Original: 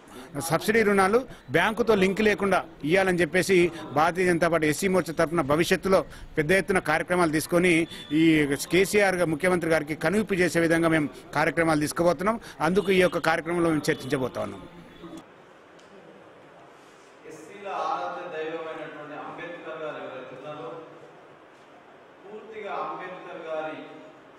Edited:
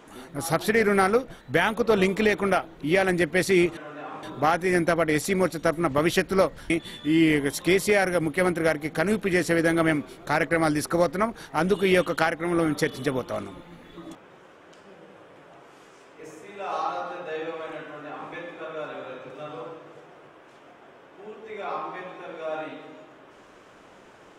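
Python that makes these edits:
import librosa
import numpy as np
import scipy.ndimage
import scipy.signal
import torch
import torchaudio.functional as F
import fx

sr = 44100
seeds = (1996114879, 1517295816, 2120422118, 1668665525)

y = fx.edit(x, sr, fx.cut(start_s=6.24, length_s=1.52),
    fx.duplicate(start_s=18.91, length_s=0.46, to_s=3.77), tone=tone)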